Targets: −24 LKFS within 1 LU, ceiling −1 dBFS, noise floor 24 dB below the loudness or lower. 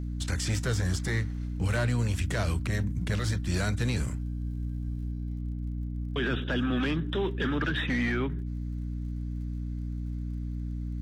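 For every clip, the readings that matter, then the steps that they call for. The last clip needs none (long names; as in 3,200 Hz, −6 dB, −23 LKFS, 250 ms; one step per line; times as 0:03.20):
crackle rate 42 per second; mains hum 60 Hz; hum harmonics up to 300 Hz; level of the hum −30 dBFS; integrated loudness −31.0 LKFS; sample peak −17.0 dBFS; target loudness −24.0 LKFS
→ click removal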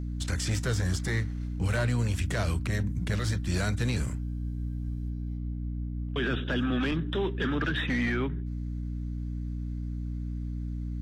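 crackle rate 0.18 per second; mains hum 60 Hz; hum harmonics up to 300 Hz; level of the hum −31 dBFS
→ mains-hum notches 60/120/180/240/300 Hz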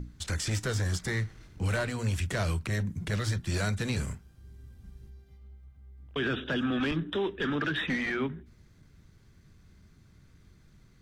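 mains hum none found; integrated loudness −31.5 LKFS; sample peak −19.5 dBFS; target loudness −24.0 LKFS
→ level +7.5 dB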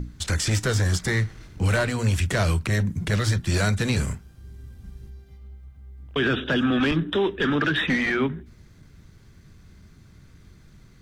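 integrated loudness −24.0 LKFS; sample peak −12.0 dBFS; background noise floor −51 dBFS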